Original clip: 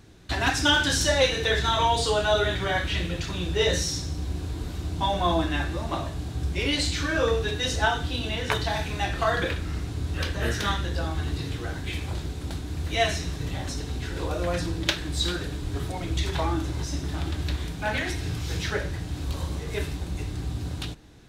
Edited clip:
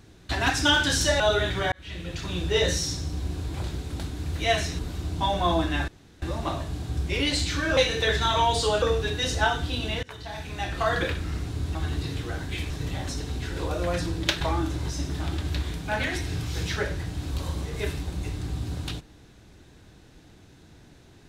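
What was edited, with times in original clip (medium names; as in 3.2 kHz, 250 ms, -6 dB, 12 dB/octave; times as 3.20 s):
1.20–2.25 s: move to 7.23 s
2.77–3.40 s: fade in
5.68 s: insert room tone 0.34 s
8.44–9.36 s: fade in, from -24 dB
10.16–11.10 s: delete
12.05–13.30 s: move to 4.59 s
15.01–16.35 s: delete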